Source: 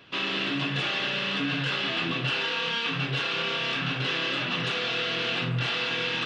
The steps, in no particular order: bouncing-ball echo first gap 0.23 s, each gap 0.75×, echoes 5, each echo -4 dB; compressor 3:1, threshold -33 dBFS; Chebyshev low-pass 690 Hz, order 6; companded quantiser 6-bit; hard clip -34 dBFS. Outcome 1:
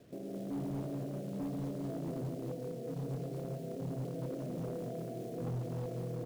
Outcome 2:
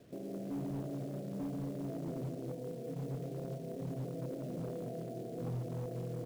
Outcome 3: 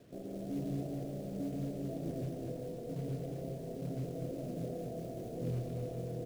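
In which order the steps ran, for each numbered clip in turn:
compressor > Chebyshev low-pass > companded quantiser > bouncing-ball echo > hard clip; bouncing-ball echo > compressor > Chebyshev low-pass > hard clip > companded quantiser; hard clip > Chebyshev low-pass > compressor > companded quantiser > bouncing-ball echo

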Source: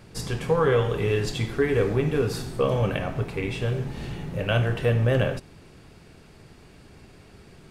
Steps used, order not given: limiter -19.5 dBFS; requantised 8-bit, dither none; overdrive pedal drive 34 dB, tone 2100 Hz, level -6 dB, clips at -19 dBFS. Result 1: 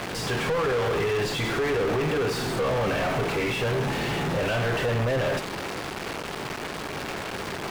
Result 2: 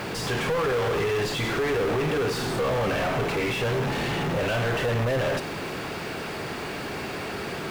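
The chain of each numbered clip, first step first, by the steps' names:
requantised > limiter > overdrive pedal; limiter > overdrive pedal > requantised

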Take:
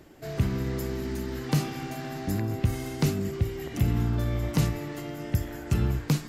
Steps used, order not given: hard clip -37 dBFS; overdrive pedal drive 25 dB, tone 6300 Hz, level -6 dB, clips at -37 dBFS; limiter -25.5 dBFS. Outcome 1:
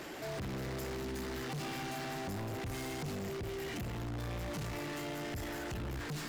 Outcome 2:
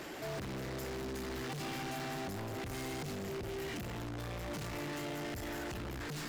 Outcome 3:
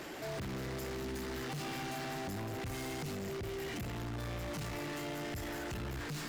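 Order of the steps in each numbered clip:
overdrive pedal > limiter > hard clip; limiter > hard clip > overdrive pedal; limiter > overdrive pedal > hard clip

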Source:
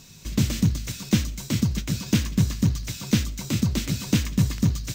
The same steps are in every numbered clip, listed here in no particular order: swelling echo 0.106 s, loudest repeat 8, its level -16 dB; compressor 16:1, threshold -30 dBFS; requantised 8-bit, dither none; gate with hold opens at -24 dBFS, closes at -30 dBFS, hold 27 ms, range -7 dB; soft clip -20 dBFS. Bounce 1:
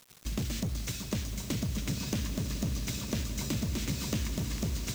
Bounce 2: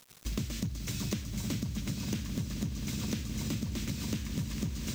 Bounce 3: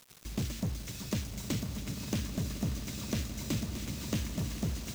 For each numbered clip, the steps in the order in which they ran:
soft clip > gate with hold > compressor > swelling echo > requantised; swelling echo > gate with hold > requantised > compressor > soft clip; soft clip > compressor > gate with hold > requantised > swelling echo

